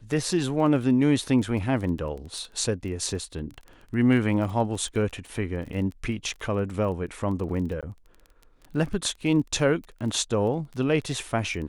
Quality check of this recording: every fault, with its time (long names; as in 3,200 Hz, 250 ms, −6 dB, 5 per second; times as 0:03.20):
surface crackle 21 per second −34 dBFS
0:07.81–0:07.83: drop-out 17 ms